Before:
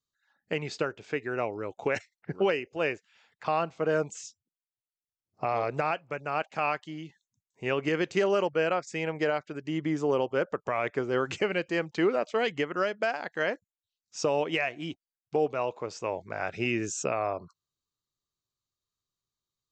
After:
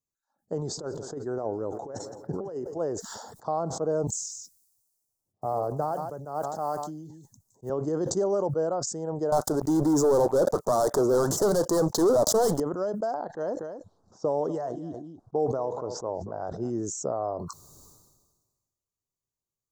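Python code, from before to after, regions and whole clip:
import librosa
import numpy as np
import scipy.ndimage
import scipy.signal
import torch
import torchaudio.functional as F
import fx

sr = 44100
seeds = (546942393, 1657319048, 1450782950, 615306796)

y = fx.chain(x, sr, fx.over_compress(threshold_db=-31.0, ratio=-0.5),
    fx.echo_feedback(ms=166, feedback_pct=58, wet_db=-21), at=(0.61, 2.78))
y = fx.chain(y, sr, fx.block_float(bits=7),
    fx.echo_single(ms=145, db=-20.5),
    fx.band_widen(depth_pct=70), at=(4.07, 7.7))
y = fx.chain(y, sr, fx.low_shelf(hz=390.0, db=-9.5),
    fx.leveller(passes=5), at=(9.32, 12.6))
y = fx.chain(y, sr, fx.env_lowpass(base_hz=1300.0, full_db=-23.5),
    fx.echo_single(ms=240, db=-17.0), at=(13.14, 16.7))
y = scipy.signal.sosfilt(scipy.signal.cheby1(2, 1.0, [830.0, 6700.0], 'bandstop', fs=sr, output='sos'), y)
y = fx.sustainer(y, sr, db_per_s=41.0)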